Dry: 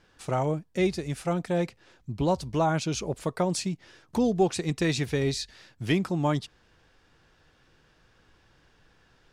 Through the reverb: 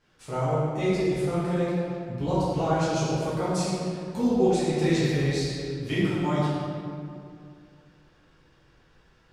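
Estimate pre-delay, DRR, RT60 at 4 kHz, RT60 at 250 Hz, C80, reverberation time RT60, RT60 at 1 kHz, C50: 5 ms, -10.5 dB, 1.4 s, 2.7 s, -1.0 dB, 2.4 s, 2.3 s, -3.5 dB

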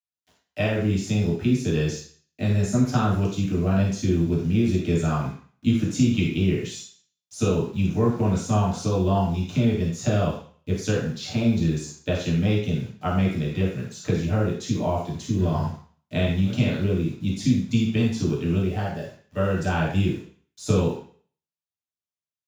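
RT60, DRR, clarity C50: 0.45 s, -5.5 dB, 3.0 dB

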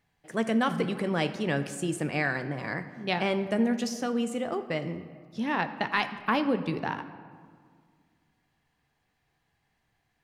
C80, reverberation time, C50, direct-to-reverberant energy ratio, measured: 13.0 dB, 1.9 s, 11.5 dB, 9.0 dB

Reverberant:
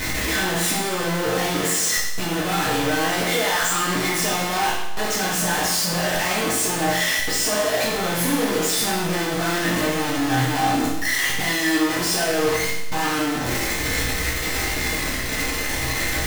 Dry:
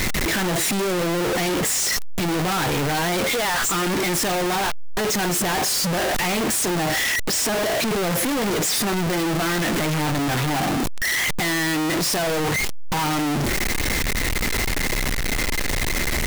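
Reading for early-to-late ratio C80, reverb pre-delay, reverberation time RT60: 5.0 dB, 5 ms, 0.95 s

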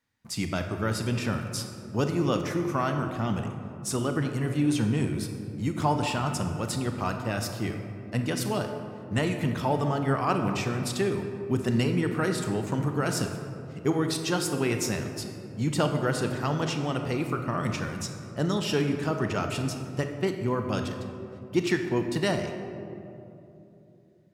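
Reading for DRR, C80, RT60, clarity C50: 5.0 dB, 7.0 dB, 3.0 s, 6.0 dB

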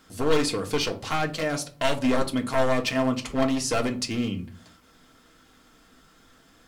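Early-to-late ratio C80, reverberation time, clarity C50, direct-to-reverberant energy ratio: 20.5 dB, 0.40 s, 15.0 dB, 2.0 dB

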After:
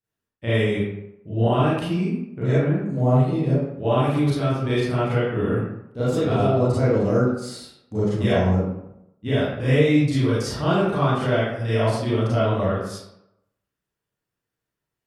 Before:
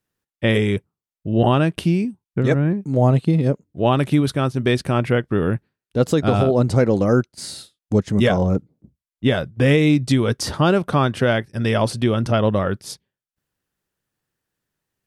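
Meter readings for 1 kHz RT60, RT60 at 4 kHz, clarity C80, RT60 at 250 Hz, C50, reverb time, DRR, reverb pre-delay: 0.80 s, 0.50 s, 2.0 dB, 0.75 s, -2.5 dB, 0.80 s, -11.0 dB, 31 ms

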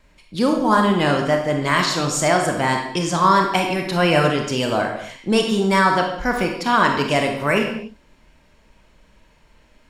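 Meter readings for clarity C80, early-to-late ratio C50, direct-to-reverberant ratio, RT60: 7.5 dB, 4.5 dB, 2.0 dB, not exponential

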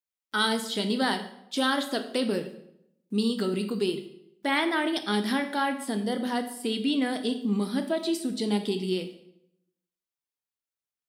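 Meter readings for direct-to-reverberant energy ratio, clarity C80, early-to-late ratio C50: 6.5 dB, 13.0 dB, 10.5 dB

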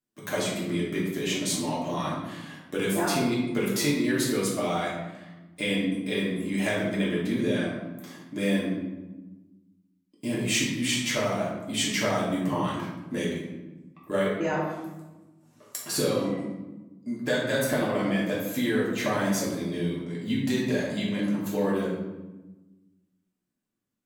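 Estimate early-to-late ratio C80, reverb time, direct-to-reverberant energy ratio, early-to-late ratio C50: 4.5 dB, 1.1 s, -6.5 dB, 1.5 dB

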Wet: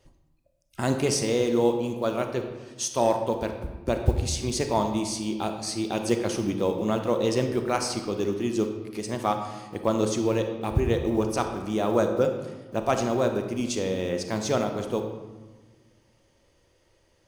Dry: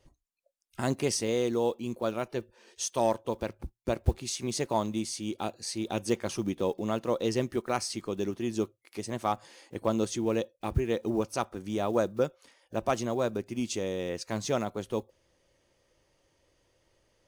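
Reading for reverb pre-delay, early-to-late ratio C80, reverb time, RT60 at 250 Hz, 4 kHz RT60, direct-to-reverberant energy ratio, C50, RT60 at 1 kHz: 30 ms, 8.5 dB, 1.4 s, 2.1 s, 0.85 s, 5.5 dB, 7.0 dB, 1.4 s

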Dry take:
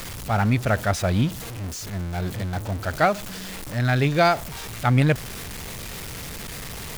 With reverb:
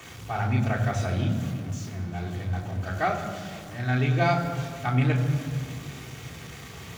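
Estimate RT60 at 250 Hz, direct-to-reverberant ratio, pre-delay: 3.0 s, -2.0 dB, 3 ms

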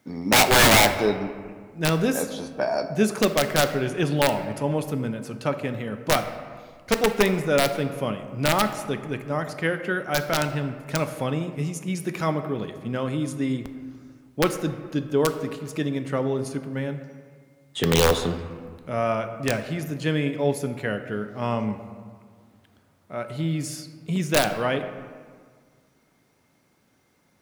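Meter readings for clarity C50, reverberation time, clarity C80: 10.0 dB, 1.7 s, 11.0 dB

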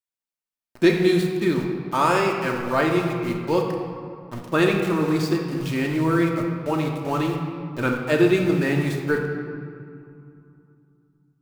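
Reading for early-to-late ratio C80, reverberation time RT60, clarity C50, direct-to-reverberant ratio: 5.0 dB, 2.7 s, 3.5 dB, 0.5 dB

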